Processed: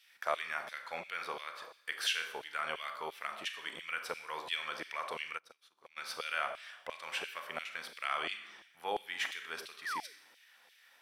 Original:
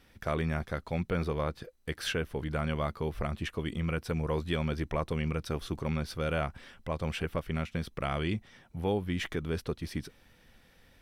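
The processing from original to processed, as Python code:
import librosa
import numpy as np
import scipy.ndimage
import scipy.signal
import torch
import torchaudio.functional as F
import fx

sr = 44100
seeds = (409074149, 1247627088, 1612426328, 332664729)

y = fx.rev_schroeder(x, sr, rt60_s=0.79, comb_ms=29, drr_db=7.0)
y = fx.spec_paint(y, sr, seeds[0], shape='fall', start_s=9.85, length_s=0.28, low_hz=380.0, high_hz=2000.0, level_db=-40.0)
y = fx.filter_lfo_highpass(y, sr, shape='saw_down', hz=2.9, low_hz=680.0, high_hz=3000.0, q=1.3)
y = fx.upward_expand(y, sr, threshold_db=-50.0, expansion=2.5, at=(5.37, 5.96), fade=0.02)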